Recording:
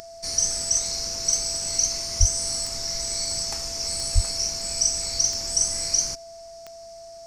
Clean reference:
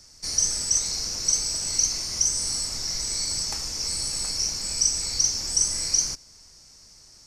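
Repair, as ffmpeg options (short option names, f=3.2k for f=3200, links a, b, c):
-filter_complex "[0:a]adeclick=t=4,bandreject=f=670:w=30,asplit=3[a][b][c];[a]afade=t=out:st=2.19:d=0.02[d];[b]highpass=f=140:w=0.5412,highpass=f=140:w=1.3066,afade=t=in:st=2.19:d=0.02,afade=t=out:st=2.31:d=0.02[e];[c]afade=t=in:st=2.31:d=0.02[f];[d][e][f]amix=inputs=3:normalize=0,asplit=3[g][h][i];[g]afade=t=out:st=4.14:d=0.02[j];[h]highpass=f=140:w=0.5412,highpass=f=140:w=1.3066,afade=t=in:st=4.14:d=0.02,afade=t=out:st=4.26:d=0.02[k];[i]afade=t=in:st=4.26:d=0.02[l];[j][k][l]amix=inputs=3:normalize=0"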